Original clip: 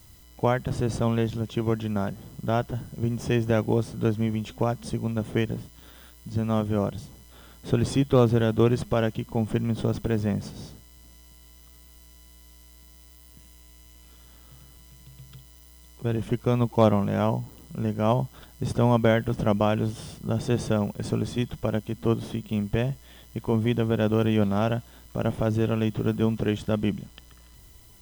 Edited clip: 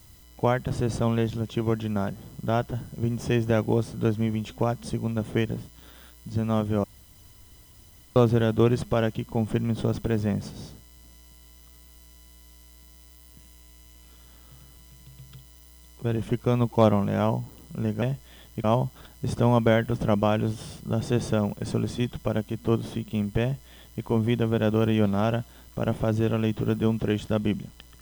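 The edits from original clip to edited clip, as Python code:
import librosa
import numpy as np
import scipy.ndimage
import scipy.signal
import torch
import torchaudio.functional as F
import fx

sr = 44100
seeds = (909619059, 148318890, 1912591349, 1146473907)

y = fx.edit(x, sr, fx.room_tone_fill(start_s=6.84, length_s=1.32),
    fx.duplicate(start_s=22.8, length_s=0.62, to_s=18.02), tone=tone)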